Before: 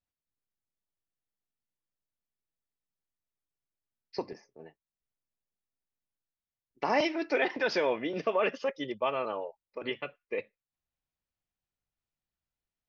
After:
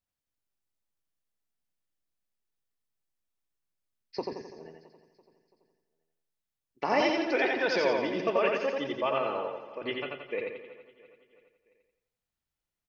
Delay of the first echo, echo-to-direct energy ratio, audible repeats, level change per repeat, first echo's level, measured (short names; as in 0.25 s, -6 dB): 87 ms, -1.5 dB, 12, no steady repeat, -3.0 dB